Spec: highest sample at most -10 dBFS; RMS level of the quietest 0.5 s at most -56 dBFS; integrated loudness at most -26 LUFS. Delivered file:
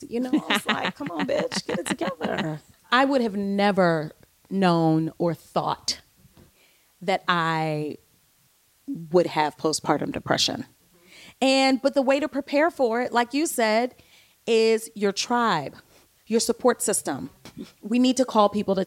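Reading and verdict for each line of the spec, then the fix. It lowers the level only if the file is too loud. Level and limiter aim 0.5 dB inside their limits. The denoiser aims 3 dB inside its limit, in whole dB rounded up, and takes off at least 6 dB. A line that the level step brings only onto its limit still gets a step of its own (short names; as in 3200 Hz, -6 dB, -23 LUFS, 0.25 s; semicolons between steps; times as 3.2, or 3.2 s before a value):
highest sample -5.0 dBFS: fail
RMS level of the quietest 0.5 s -63 dBFS: OK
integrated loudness -23.5 LUFS: fail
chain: gain -3 dB; limiter -10.5 dBFS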